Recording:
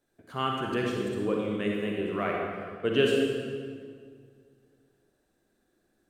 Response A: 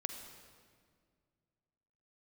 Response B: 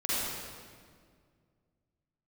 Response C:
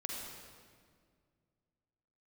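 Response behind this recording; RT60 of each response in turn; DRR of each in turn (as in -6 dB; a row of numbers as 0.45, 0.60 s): C; 2.0, 2.0, 2.0 s; 6.0, -10.5, -1.5 dB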